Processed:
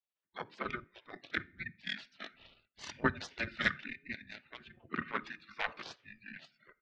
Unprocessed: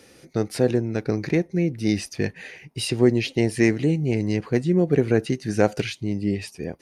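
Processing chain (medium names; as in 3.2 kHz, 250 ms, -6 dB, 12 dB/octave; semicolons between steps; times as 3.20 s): spectral noise reduction 30 dB; mistuned SSB -360 Hz 250–3600 Hz; comb 3.3 ms, depth 55%; Chebyshev shaper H 2 -8 dB, 3 -22 dB, 6 -23 dB, 7 -30 dB, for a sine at -5.5 dBFS; on a send at -19 dB: reverberation, pre-delay 5 ms; on the sum: spectral gate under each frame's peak -20 dB weak; trim +1 dB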